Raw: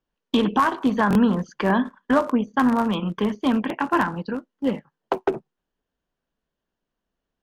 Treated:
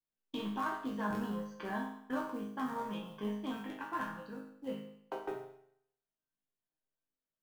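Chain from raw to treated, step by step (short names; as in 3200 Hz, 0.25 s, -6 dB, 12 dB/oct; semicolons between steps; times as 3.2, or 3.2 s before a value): modulation noise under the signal 30 dB; resonator bank G#2 major, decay 0.69 s; gain +1.5 dB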